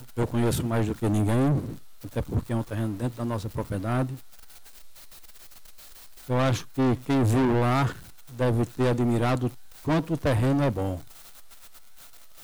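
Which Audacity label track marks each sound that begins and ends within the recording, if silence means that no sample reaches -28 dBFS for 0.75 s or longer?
6.300000	10.960000	sound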